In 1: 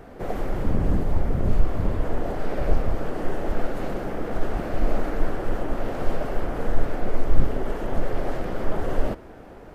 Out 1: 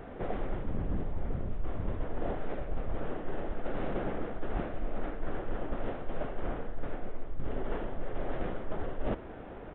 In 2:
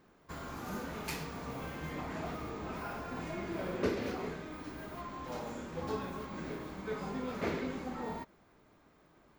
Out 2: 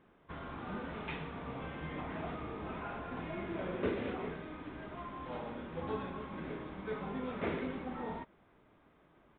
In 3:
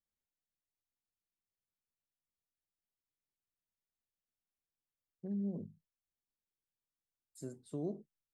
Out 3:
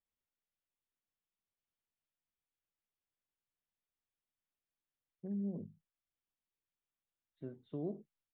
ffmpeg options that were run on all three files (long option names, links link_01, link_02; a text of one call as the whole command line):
ffmpeg -i in.wav -af "areverse,acompressor=threshold=-26dB:ratio=10,areverse,aresample=8000,aresample=44100,volume=-1dB" out.wav